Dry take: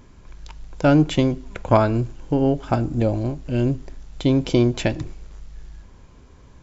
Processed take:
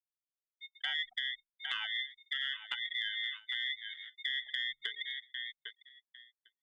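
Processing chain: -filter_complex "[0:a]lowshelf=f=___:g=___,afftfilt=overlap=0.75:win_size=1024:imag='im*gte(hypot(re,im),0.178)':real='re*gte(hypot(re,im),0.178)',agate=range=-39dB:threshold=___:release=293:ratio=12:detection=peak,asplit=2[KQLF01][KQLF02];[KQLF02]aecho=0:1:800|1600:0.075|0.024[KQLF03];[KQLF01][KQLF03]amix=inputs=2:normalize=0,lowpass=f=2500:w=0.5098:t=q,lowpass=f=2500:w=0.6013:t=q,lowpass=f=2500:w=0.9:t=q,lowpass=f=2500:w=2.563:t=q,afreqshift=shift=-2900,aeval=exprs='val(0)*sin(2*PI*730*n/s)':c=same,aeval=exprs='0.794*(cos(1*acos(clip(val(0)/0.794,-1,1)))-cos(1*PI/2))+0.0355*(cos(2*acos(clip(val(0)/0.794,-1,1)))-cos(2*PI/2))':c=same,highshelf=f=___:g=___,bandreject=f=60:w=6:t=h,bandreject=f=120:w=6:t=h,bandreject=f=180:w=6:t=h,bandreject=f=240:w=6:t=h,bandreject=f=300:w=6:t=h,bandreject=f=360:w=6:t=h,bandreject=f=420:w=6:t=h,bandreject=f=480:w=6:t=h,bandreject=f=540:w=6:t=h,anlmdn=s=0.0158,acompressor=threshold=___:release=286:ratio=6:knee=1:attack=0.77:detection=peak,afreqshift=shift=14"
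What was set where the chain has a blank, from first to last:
230, -6, -51dB, 2100, 5, -30dB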